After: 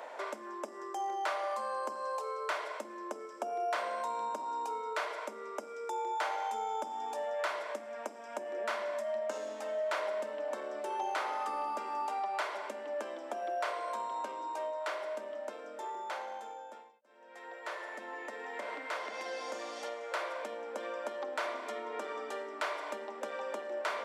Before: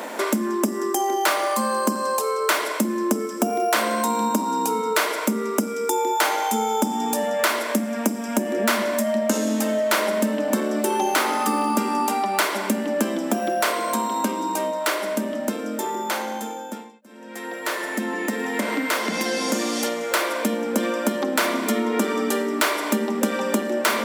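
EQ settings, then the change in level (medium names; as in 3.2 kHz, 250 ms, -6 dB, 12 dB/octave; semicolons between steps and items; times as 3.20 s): ladder high-pass 450 Hz, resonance 25%; tape spacing loss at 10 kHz 25 dB; treble shelf 5.7 kHz +9 dB; -5.5 dB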